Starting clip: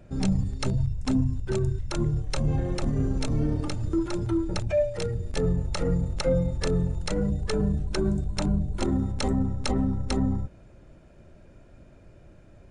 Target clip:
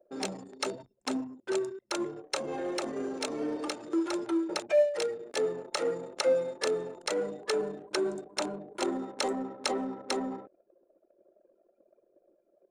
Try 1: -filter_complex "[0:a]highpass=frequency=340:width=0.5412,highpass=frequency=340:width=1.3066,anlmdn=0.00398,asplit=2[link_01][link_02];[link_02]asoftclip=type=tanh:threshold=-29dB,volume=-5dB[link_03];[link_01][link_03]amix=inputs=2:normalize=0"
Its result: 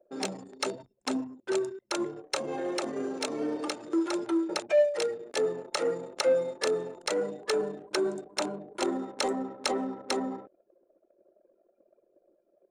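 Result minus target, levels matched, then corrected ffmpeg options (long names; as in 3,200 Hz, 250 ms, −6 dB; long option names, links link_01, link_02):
soft clipping: distortion −6 dB
-filter_complex "[0:a]highpass=frequency=340:width=0.5412,highpass=frequency=340:width=1.3066,anlmdn=0.00398,asplit=2[link_01][link_02];[link_02]asoftclip=type=tanh:threshold=-40dB,volume=-5dB[link_03];[link_01][link_03]amix=inputs=2:normalize=0"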